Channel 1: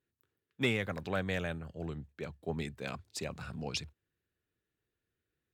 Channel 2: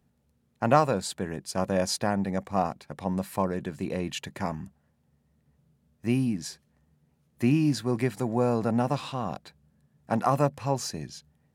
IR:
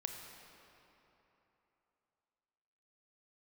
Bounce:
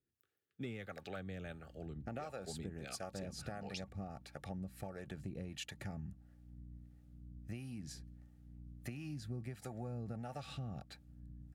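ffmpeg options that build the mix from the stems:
-filter_complex "[0:a]volume=-1dB[a];[1:a]asubboost=boost=3.5:cutoff=140,acompressor=threshold=-26dB:ratio=6,aeval=exprs='val(0)+0.00398*(sin(2*PI*60*n/s)+sin(2*PI*2*60*n/s)/2+sin(2*PI*3*60*n/s)/3+sin(2*PI*4*60*n/s)/4+sin(2*PI*5*60*n/s)/5)':c=same,adelay=1450,volume=-2dB[b];[a][b]amix=inputs=2:normalize=0,acrossover=split=430[c][d];[c]aeval=exprs='val(0)*(1-0.7/2+0.7/2*cos(2*PI*1.5*n/s))':c=same[e];[d]aeval=exprs='val(0)*(1-0.7/2-0.7/2*cos(2*PI*1.5*n/s))':c=same[f];[e][f]amix=inputs=2:normalize=0,asuperstop=centerf=1000:order=20:qfactor=4.7,acompressor=threshold=-45dB:ratio=2.5"

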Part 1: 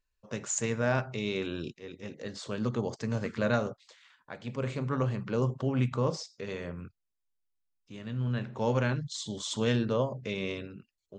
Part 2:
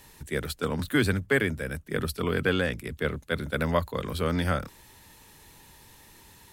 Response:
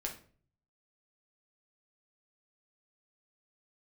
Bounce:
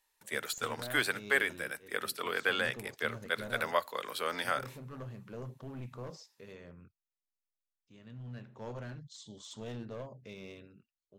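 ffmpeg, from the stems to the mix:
-filter_complex "[0:a]aeval=exprs='clip(val(0),-1,0.0376)':c=same,volume=-13dB[a];[1:a]agate=range=-22dB:threshold=-45dB:ratio=16:detection=peak,highpass=670,volume=-2dB,asplit=2[b][c];[c]volume=-18.5dB[d];[2:a]atrim=start_sample=2205[e];[d][e]afir=irnorm=-1:irlink=0[f];[a][b][f]amix=inputs=3:normalize=0"

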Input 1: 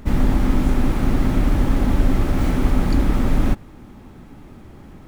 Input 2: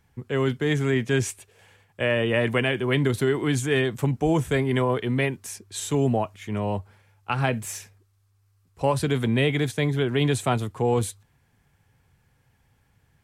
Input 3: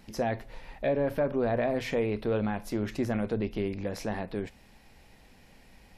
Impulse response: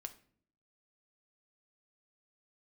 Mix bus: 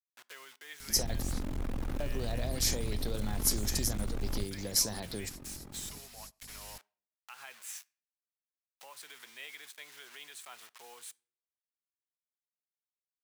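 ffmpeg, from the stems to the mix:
-filter_complex "[0:a]asoftclip=type=tanh:threshold=-21.5dB,tremolo=f=44:d=0.857,adelay=900,volume=-5dB[a];[1:a]acrusher=bits=5:mix=0:aa=0.000001,alimiter=limit=-21.5dB:level=0:latency=1:release=207,highpass=1.3k,volume=-11.5dB,asplit=3[b][c][d];[c]volume=-5.5dB[e];[2:a]aeval=exprs='val(0)+0.00282*(sin(2*PI*50*n/s)+sin(2*PI*2*50*n/s)/2+sin(2*PI*3*50*n/s)/3+sin(2*PI*4*50*n/s)/4+sin(2*PI*5*50*n/s)/5)':c=same,aexciter=amount=7.8:drive=8.7:freq=4.1k,adelay=800,volume=-3.5dB[f];[d]apad=whole_len=298919[g];[f][g]sidechaingate=range=-33dB:threshold=-56dB:ratio=16:detection=peak[h];[3:a]atrim=start_sample=2205[i];[e][i]afir=irnorm=-1:irlink=0[j];[a][b][h][j]amix=inputs=4:normalize=0,acrossover=split=130|3000[k][l][m];[l]acompressor=threshold=-37dB:ratio=6[n];[k][n][m]amix=inputs=3:normalize=0"

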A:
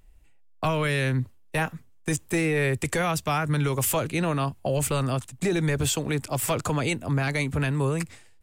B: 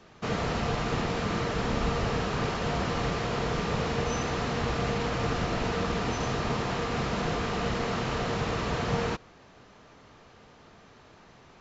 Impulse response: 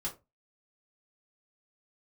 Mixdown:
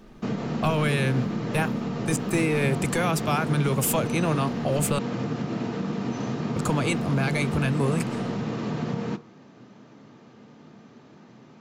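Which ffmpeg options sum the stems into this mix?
-filter_complex "[0:a]bandreject=f=1.9k:w=12,volume=0dB,asplit=3[a][b][c];[a]atrim=end=4.99,asetpts=PTS-STARTPTS,afade=t=out:st=4.986:d=0.004:c=hsin[d];[b]atrim=start=4.99:end=6.56,asetpts=PTS-STARTPTS,volume=0[e];[c]atrim=start=6.56,asetpts=PTS-STARTPTS,afade=t=in:d=0.004:c=hsin[f];[d][e][f]concat=n=3:v=0:a=1[g];[1:a]equalizer=f=200:t=o:w=2:g=14,acompressor=threshold=-22dB:ratio=6,highpass=f=110:w=0.5412,highpass=f=110:w=1.3066,volume=-5dB,asplit=2[h][i];[i]volume=-8dB[j];[2:a]atrim=start_sample=2205[k];[j][k]afir=irnorm=-1:irlink=0[l];[g][h][l]amix=inputs=3:normalize=0"

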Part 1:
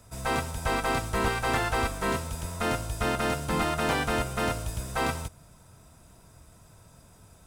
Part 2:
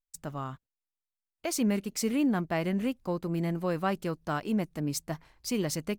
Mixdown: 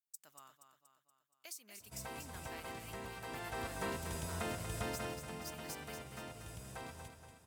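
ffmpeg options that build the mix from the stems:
-filter_complex "[0:a]highpass=73,equalizer=f=1.3k:t=o:w=0.27:g=-6,acompressor=threshold=-34dB:ratio=6,adelay=1800,volume=-3.5dB,afade=t=in:st=3.24:d=0.49:silence=0.446684,afade=t=out:st=4.89:d=0.38:silence=0.398107,asplit=2[a][b];[b]volume=-8.5dB[c];[1:a]aderivative,acompressor=threshold=-42dB:ratio=6,volume=-4.5dB,asplit=2[d][e];[e]volume=-8dB[f];[c][f]amix=inputs=2:normalize=0,aecho=0:1:237|474|711|948|1185|1422|1659|1896:1|0.54|0.292|0.157|0.085|0.0459|0.0248|0.0134[g];[a][d][g]amix=inputs=3:normalize=0"

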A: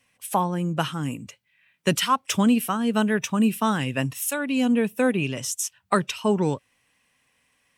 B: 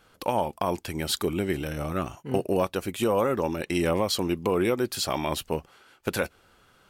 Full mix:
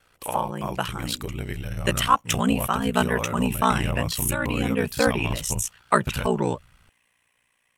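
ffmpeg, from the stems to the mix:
-filter_complex "[0:a]equalizer=f=5k:w=2:g=-8,dynaudnorm=f=210:g=13:m=9dB,volume=2dB[a];[1:a]asubboost=boost=9:cutoff=140,volume=0.5dB,asplit=2[b][c];[c]apad=whole_len=342811[d];[a][d]sidechaincompress=threshold=-23dB:ratio=8:attack=44:release=228[e];[e][b]amix=inputs=2:normalize=0,equalizer=f=240:t=o:w=2:g=-6.5,aeval=exprs='val(0)*sin(2*PI*30*n/s)':c=same"

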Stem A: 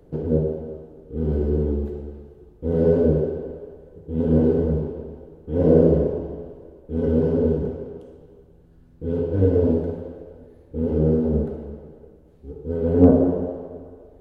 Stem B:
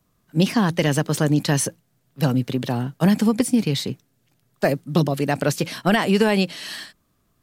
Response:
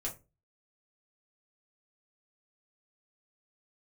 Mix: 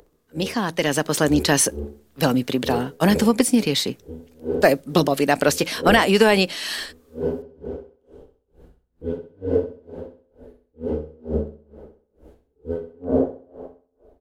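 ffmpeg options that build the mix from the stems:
-filter_complex "[0:a]acompressor=mode=upward:threshold=-37dB:ratio=2.5,aeval=exprs='val(0)*pow(10,-37*(0.5-0.5*cos(2*PI*2.2*n/s))/20)':c=same,volume=-8dB,asplit=2[a][b];[b]volume=-11.5dB[c];[1:a]volume=-3.5dB,asplit=2[d][e];[e]volume=-23dB[f];[2:a]atrim=start_sample=2205[g];[f][g]afir=irnorm=-1:irlink=0[h];[c]aecho=0:1:65|130|195|260|325:1|0.37|0.137|0.0507|0.0187[i];[a][d][h][i]amix=inputs=4:normalize=0,equalizer=f=130:t=o:w=1.3:g=-12,dynaudnorm=f=110:g=17:m=11.5dB"

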